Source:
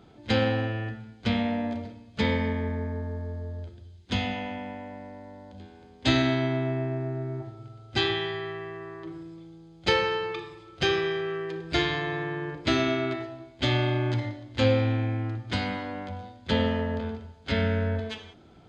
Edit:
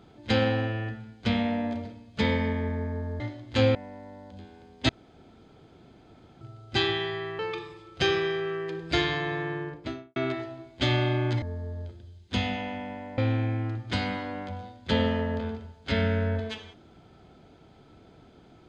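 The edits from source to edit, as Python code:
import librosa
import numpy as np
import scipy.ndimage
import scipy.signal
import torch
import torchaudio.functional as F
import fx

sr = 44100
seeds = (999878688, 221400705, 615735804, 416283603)

y = fx.studio_fade_out(x, sr, start_s=12.3, length_s=0.67)
y = fx.edit(y, sr, fx.swap(start_s=3.2, length_s=1.76, other_s=14.23, other_length_s=0.55),
    fx.room_tone_fill(start_s=6.1, length_s=1.52),
    fx.cut(start_s=8.6, length_s=1.6), tone=tone)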